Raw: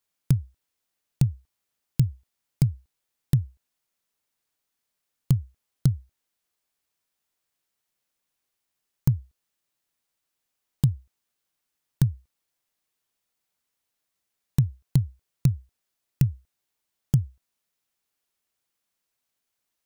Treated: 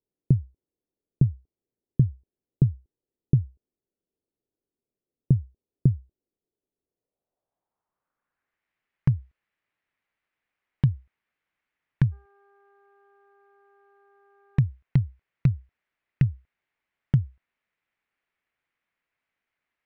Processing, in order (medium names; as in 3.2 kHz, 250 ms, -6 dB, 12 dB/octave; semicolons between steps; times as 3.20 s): low-pass sweep 390 Hz -> 2.1 kHz, 6.80–8.68 s; 12.11–14.59 s: mains buzz 400 Hz, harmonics 4, -61 dBFS -4 dB/octave